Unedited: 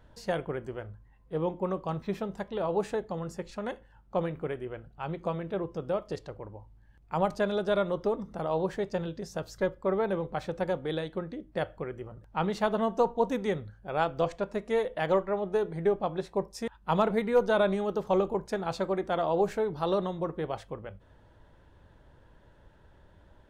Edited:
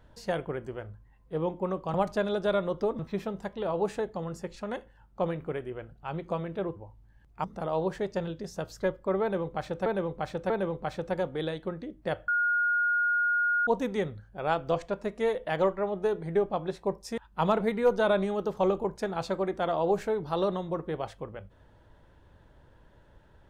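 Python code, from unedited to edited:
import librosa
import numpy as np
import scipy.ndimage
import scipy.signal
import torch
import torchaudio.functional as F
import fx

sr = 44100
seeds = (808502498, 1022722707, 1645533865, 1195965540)

y = fx.edit(x, sr, fx.cut(start_s=5.71, length_s=0.78),
    fx.move(start_s=7.17, length_s=1.05, to_s=1.94),
    fx.repeat(start_s=10.0, length_s=0.64, count=3),
    fx.bleep(start_s=11.78, length_s=1.39, hz=1430.0, db=-23.0), tone=tone)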